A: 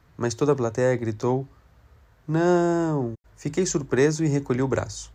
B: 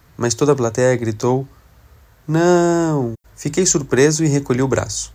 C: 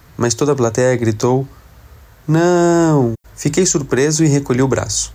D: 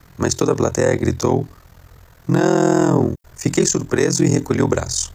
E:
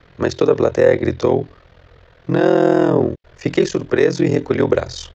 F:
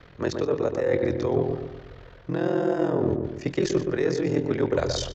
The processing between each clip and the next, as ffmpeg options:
ffmpeg -i in.wav -af "highshelf=frequency=5800:gain=12,volume=6.5dB" out.wav
ffmpeg -i in.wav -af "alimiter=limit=-10dB:level=0:latency=1:release=167,volume=6dB" out.wav
ffmpeg -i in.wav -af "aeval=exprs='val(0)*sin(2*PI*21*n/s)':channel_layout=same" out.wav
ffmpeg -i in.wav -af "firequalizer=gain_entry='entry(210,0);entry(500,10);entry(850,1);entry(1700,5);entry(3300,7);entry(9200,-28)':delay=0.05:min_phase=1,volume=-3.5dB" out.wav
ffmpeg -i in.wav -filter_complex "[0:a]areverse,acompressor=threshold=-21dB:ratio=10,areverse,asplit=2[link_01][link_02];[link_02]adelay=123,lowpass=frequency=1300:poles=1,volume=-4dB,asplit=2[link_03][link_04];[link_04]adelay=123,lowpass=frequency=1300:poles=1,volume=0.47,asplit=2[link_05][link_06];[link_06]adelay=123,lowpass=frequency=1300:poles=1,volume=0.47,asplit=2[link_07][link_08];[link_08]adelay=123,lowpass=frequency=1300:poles=1,volume=0.47,asplit=2[link_09][link_10];[link_10]adelay=123,lowpass=frequency=1300:poles=1,volume=0.47,asplit=2[link_11][link_12];[link_12]adelay=123,lowpass=frequency=1300:poles=1,volume=0.47[link_13];[link_01][link_03][link_05][link_07][link_09][link_11][link_13]amix=inputs=7:normalize=0" out.wav

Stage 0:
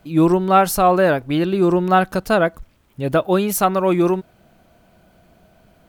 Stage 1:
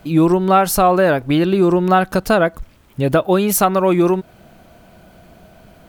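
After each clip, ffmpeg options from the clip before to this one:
ffmpeg -i in.wav -af "acompressor=threshold=-23dB:ratio=2,volume=8dB" out.wav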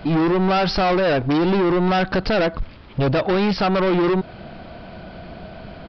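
ffmpeg -i in.wav -af "alimiter=limit=-8dB:level=0:latency=1:release=97,aresample=11025,asoftclip=type=tanh:threshold=-24.5dB,aresample=44100,volume=8.5dB" out.wav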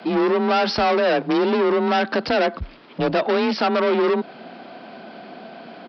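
ffmpeg -i in.wav -filter_complex "[0:a]acrossover=split=160|1000[link_01][link_02][link_03];[link_01]acrusher=bits=2:mix=0:aa=0.5[link_04];[link_04][link_02][link_03]amix=inputs=3:normalize=0,afreqshift=30" out.wav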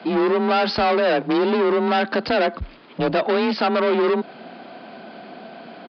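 ffmpeg -i in.wav -af "aresample=11025,aresample=44100" out.wav

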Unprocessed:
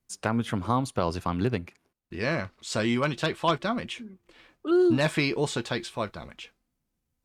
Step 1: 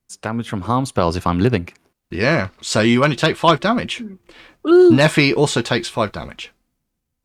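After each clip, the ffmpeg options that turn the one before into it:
ffmpeg -i in.wav -af "dynaudnorm=framelen=120:gausssize=13:maxgain=9.5dB,volume=2.5dB" out.wav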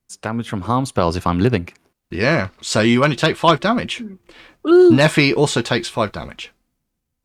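ffmpeg -i in.wav -af anull out.wav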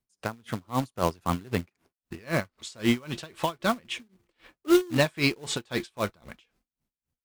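ffmpeg -i in.wav -filter_complex "[0:a]acrossover=split=1900[link_01][link_02];[link_01]acrusher=bits=3:mode=log:mix=0:aa=0.000001[link_03];[link_03][link_02]amix=inputs=2:normalize=0,aeval=exprs='val(0)*pow(10,-28*(0.5-0.5*cos(2*PI*3.8*n/s))/20)':channel_layout=same,volume=-6dB" out.wav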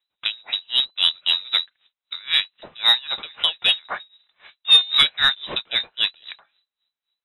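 ffmpeg -i in.wav -af "lowpass=frequency=3400:width_type=q:width=0.5098,lowpass=frequency=3400:width_type=q:width=0.6013,lowpass=frequency=3400:width_type=q:width=0.9,lowpass=frequency=3400:width_type=q:width=2.563,afreqshift=-4000,acontrast=89" out.wav

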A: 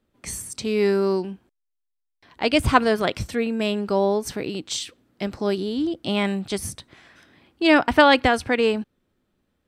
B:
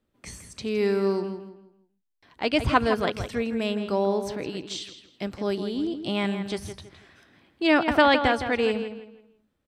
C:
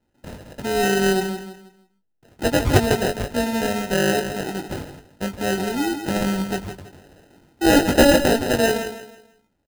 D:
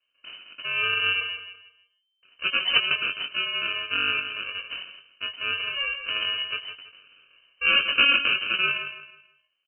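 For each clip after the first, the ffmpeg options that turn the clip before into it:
ffmpeg -i in.wav -filter_complex "[0:a]acrossover=split=5800[link_01][link_02];[link_02]acompressor=threshold=-47dB:ratio=6[link_03];[link_01][link_03]amix=inputs=2:normalize=0,asplit=2[link_04][link_05];[link_05]adelay=163,lowpass=frequency=4100:poles=1,volume=-9dB,asplit=2[link_06][link_07];[link_07]adelay=163,lowpass=frequency=4100:poles=1,volume=0.32,asplit=2[link_08][link_09];[link_09]adelay=163,lowpass=frequency=4100:poles=1,volume=0.32,asplit=2[link_10][link_11];[link_11]adelay=163,lowpass=frequency=4100:poles=1,volume=0.32[link_12];[link_04][link_06][link_08][link_10][link_12]amix=inputs=5:normalize=0,volume=-4dB" out.wav
ffmpeg -i in.wav -filter_complex "[0:a]acrusher=samples=39:mix=1:aa=0.000001,asplit=2[link_01][link_02];[link_02]adelay=21,volume=-7dB[link_03];[link_01][link_03]amix=inputs=2:normalize=0,volume=4dB" out.wav
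ffmpeg -i in.wav -af "crystalizer=i=2.5:c=0,lowpass=frequency=2600:width_type=q:width=0.5098,lowpass=frequency=2600:width_type=q:width=0.6013,lowpass=frequency=2600:width_type=q:width=0.9,lowpass=frequency=2600:width_type=q:width=2.563,afreqshift=-3100,volume=-6dB" out.wav

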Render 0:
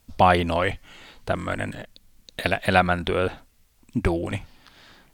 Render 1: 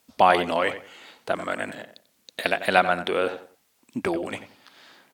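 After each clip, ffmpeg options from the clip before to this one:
ffmpeg -i in.wav -filter_complex "[0:a]highpass=280,asplit=2[link_01][link_02];[link_02]adelay=91,lowpass=frequency=2000:poles=1,volume=-11dB,asplit=2[link_03][link_04];[link_04]adelay=91,lowpass=frequency=2000:poles=1,volume=0.27,asplit=2[link_05][link_06];[link_06]adelay=91,lowpass=frequency=2000:poles=1,volume=0.27[link_07];[link_03][link_05][link_07]amix=inputs=3:normalize=0[link_08];[link_01][link_08]amix=inputs=2:normalize=0" out.wav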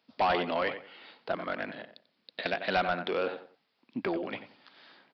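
ffmpeg -i in.wav -af "highpass=frequency=120:width=0.5412,highpass=frequency=120:width=1.3066,aresample=11025,asoftclip=type=tanh:threshold=-16dB,aresample=44100,volume=-4.5dB" out.wav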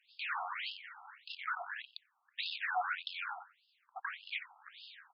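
ffmpeg -i in.wav -af "volume=34.5dB,asoftclip=hard,volume=-34.5dB,afftfilt=real='re*between(b*sr/1024,960*pow(3800/960,0.5+0.5*sin(2*PI*1.7*pts/sr))/1.41,960*pow(3800/960,0.5+0.5*sin(2*PI*1.7*pts/sr))*1.41)':imag='im*between(b*sr/1024,960*pow(3800/960,0.5+0.5*sin(2*PI*1.7*pts/sr))/1.41,960*pow(3800/960,0.5+0.5*sin(2*PI*1.7*pts/sr))*1.41)':win_size=1024:overlap=0.75,volume=6.5dB" out.wav

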